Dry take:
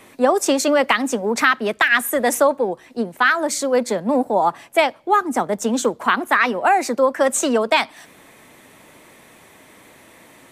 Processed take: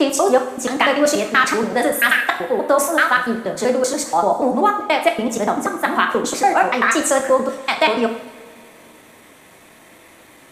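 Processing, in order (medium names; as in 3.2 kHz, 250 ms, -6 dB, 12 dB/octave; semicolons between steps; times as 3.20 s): slices played last to first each 96 ms, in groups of 6; two-slope reverb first 0.66 s, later 2.9 s, from -20 dB, DRR 3.5 dB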